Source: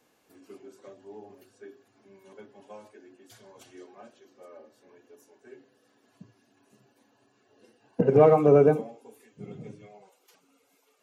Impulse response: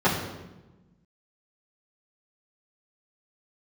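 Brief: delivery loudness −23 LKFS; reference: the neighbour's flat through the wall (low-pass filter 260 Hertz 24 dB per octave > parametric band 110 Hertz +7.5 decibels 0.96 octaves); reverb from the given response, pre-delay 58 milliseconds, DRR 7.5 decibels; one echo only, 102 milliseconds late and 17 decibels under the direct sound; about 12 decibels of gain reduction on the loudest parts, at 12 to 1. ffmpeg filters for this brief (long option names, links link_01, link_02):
-filter_complex "[0:a]acompressor=threshold=-25dB:ratio=12,aecho=1:1:102:0.141,asplit=2[link_01][link_02];[1:a]atrim=start_sample=2205,adelay=58[link_03];[link_02][link_03]afir=irnorm=-1:irlink=0,volume=-25.5dB[link_04];[link_01][link_04]amix=inputs=2:normalize=0,lowpass=frequency=260:width=0.5412,lowpass=frequency=260:width=1.3066,equalizer=frequency=110:width_type=o:width=0.96:gain=7.5,volume=14.5dB"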